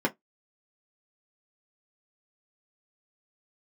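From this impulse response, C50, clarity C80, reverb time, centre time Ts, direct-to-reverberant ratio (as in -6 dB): 24.5 dB, 38.0 dB, 0.15 s, 8 ms, -1.5 dB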